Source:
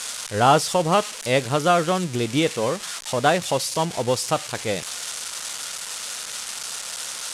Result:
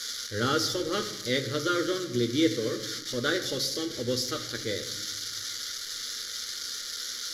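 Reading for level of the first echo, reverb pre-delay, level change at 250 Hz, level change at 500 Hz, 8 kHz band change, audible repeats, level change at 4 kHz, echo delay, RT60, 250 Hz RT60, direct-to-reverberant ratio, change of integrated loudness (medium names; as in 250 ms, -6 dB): no echo, 8 ms, -3.5 dB, -8.0 dB, -6.5 dB, no echo, -1.5 dB, no echo, 1.2 s, 2.1 s, 4.5 dB, -6.5 dB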